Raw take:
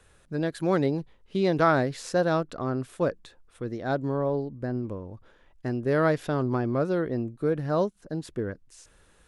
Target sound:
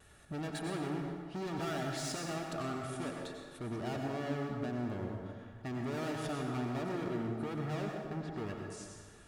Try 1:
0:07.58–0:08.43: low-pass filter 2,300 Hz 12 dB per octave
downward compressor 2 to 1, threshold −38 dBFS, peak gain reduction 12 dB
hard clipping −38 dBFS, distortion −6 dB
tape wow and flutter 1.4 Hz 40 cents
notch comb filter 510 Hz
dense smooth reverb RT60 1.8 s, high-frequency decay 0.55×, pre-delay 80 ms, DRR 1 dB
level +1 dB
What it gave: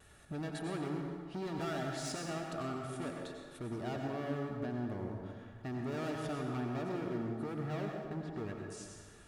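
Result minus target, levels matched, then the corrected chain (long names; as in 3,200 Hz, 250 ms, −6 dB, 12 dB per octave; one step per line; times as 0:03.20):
downward compressor: peak gain reduction +5 dB
0:07.58–0:08.43: low-pass filter 2,300 Hz 12 dB per octave
downward compressor 2 to 1, threshold −28.5 dBFS, peak gain reduction 7.5 dB
hard clipping −38 dBFS, distortion −4 dB
tape wow and flutter 1.4 Hz 40 cents
notch comb filter 510 Hz
dense smooth reverb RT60 1.8 s, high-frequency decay 0.55×, pre-delay 80 ms, DRR 1 dB
level +1 dB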